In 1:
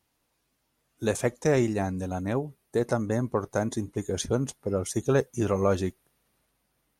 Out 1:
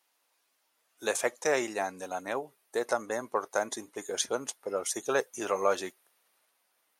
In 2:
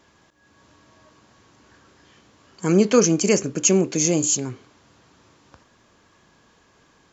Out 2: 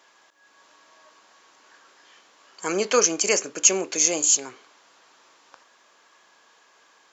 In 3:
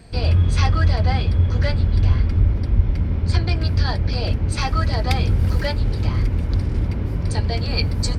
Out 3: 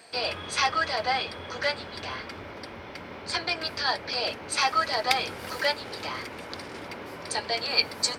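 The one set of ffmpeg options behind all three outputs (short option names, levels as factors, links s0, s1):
-af "highpass=640,volume=1.33"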